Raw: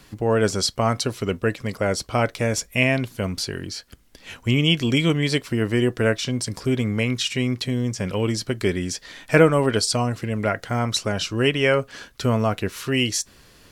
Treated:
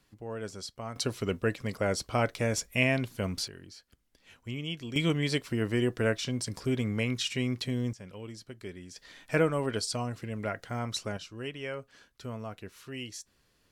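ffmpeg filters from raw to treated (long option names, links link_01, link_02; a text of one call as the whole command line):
ffmpeg -i in.wav -af "asetnsamples=nb_out_samples=441:pad=0,asendcmd='0.96 volume volume -6.5dB;3.48 volume volume -17.5dB;4.96 volume volume -7.5dB;7.93 volume volume -20dB;8.96 volume volume -11dB;11.17 volume volume -18.5dB',volume=-18.5dB" out.wav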